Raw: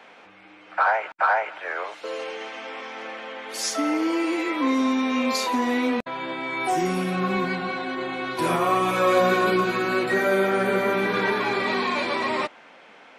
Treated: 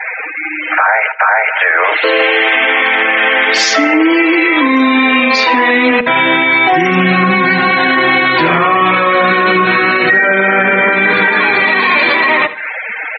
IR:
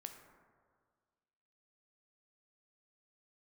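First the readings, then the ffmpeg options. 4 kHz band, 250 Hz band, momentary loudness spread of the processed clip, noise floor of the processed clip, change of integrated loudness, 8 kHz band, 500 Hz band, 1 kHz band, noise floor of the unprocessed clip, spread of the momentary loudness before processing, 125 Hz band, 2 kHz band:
+16.0 dB, +11.0 dB, 2 LU, -22 dBFS, +14.0 dB, +8.0 dB, +9.5 dB, +12.5 dB, -49 dBFS, 12 LU, +11.5 dB, +19.0 dB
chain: -filter_complex "[0:a]acrossover=split=630|1800[a][b][c];[c]acontrast=84[d];[a][b][d]amix=inputs=3:normalize=0,lowpass=3.4k,equalizer=f=1.9k:w=2.5:g=6,bandreject=f=60:t=h:w=6,bandreject=f=120:t=h:w=6,bandreject=f=180:t=h:w=6,bandreject=f=240:t=h:w=6,bandreject=f=300:t=h:w=6,bandreject=f=360:t=h:w=6,bandreject=f=420:t=h:w=6,bandreject=f=480:t=h:w=6,aecho=1:1:6.4:0.32,acompressor=threshold=-28dB:ratio=16,afftfilt=real='re*gte(hypot(re,im),0.0126)':imag='im*gte(hypot(re,im),0.0126)':win_size=1024:overlap=0.75,aecho=1:1:76|152|228:0.126|0.0453|0.0163,alimiter=level_in=25.5dB:limit=-1dB:release=50:level=0:latency=1,volume=-1dB"

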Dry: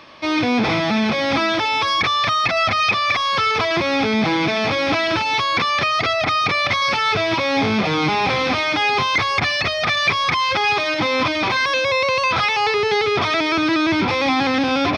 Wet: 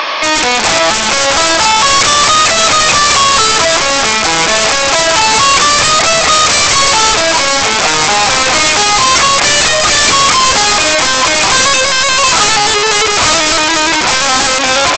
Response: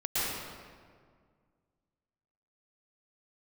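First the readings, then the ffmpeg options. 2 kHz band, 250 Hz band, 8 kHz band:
+8.5 dB, -1.0 dB, +28.5 dB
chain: -filter_complex "[0:a]aeval=exprs='(tanh(28.2*val(0)+0.1)-tanh(0.1))/28.2':c=same,acrossover=split=1700[a][b];[a]acompressor=mode=upward:threshold=-39dB:ratio=2.5[c];[c][b]amix=inputs=2:normalize=0,highpass=660,highshelf=f=2.5k:g=3,aecho=1:1:738:0.168,aresample=16000,aeval=exprs='(mod(17.8*val(0)+1,2)-1)/17.8':c=same,aresample=44100,alimiter=level_in=28dB:limit=-1dB:release=50:level=0:latency=1,volume=-1dB"

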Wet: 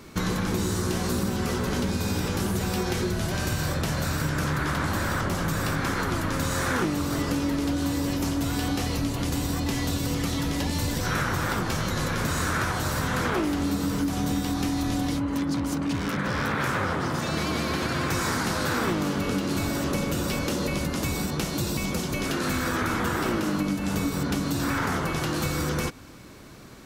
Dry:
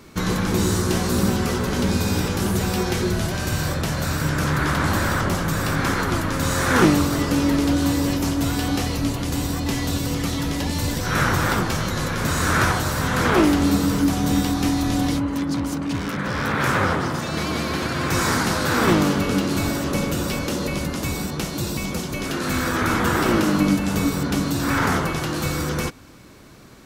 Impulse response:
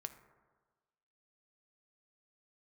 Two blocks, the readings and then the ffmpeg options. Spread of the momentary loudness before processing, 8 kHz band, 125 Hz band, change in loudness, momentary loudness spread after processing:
6 LU, -4.5 dB, -5.0 dB, -5.0 dB, 2 LU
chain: -af "acompressor=threshold=-23dB:ratio=6"

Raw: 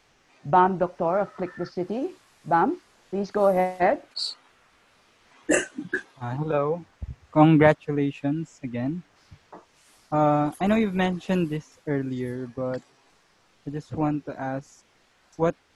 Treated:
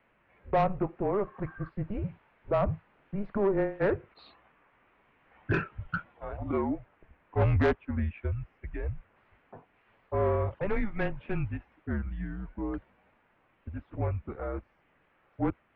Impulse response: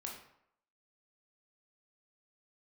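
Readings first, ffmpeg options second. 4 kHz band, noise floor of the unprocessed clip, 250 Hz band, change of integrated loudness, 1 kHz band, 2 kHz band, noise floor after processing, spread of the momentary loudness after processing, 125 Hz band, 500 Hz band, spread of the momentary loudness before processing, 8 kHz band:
-17.5 dB, -63 dBFS, -9.0 dB, -7.0 dB, -11.0 dB, -7.0 dB, -69 dBFS, 13 LU, -3.0 dB, -6.5 dB, 15 LU, under -30 dB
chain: -af "highpass=f=190:t=q:w=0.5412,highpass=f=190:t=q:w=1.307,lowpass=f=2.8k:t=q:w=0.5176,lowpass=f=2.8k:t=q:w=0.7071,lowpass=f=2.8k:t=q:w=1.932,afreqshift=-200,asoftclip=type=tanh:threshold=-14.5dB,volume=-4dB"

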